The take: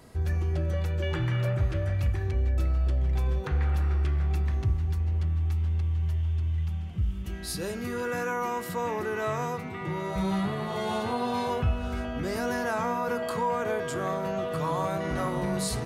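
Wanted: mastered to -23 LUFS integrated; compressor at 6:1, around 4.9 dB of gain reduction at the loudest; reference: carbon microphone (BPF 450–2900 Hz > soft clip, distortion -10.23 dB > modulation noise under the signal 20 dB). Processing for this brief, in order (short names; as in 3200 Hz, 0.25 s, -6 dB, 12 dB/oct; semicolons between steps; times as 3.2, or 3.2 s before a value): compressor 6:1, threshold -27 dBFS; BPF 450–2900 Hz; soft clip -35 dBFS; modulation noise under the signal 20 dB; gain +17.5 dB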